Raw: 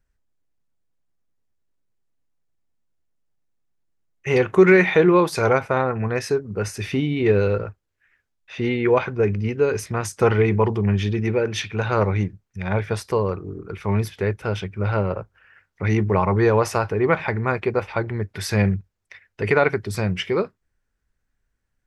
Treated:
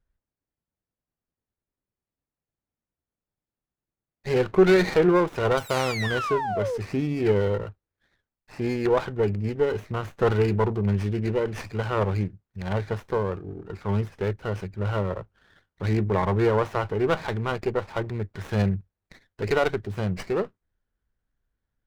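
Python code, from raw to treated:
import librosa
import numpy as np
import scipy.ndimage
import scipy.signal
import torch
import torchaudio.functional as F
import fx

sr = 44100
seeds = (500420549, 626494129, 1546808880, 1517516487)

y = fx.high_shelf(x, sr, hz=4800.0, db=-11.5)
y = fx.spec_paint(y, sr, seeds[0], shape='fall', start_s=5.57, length_s=1.21, low_hz=440.0, high_hz=4700.0, level_db=-24.0)
y = fx.running_max(y, sr, window=9)
y = F.gain(torch.from_numpy(y), -3.5).numpy()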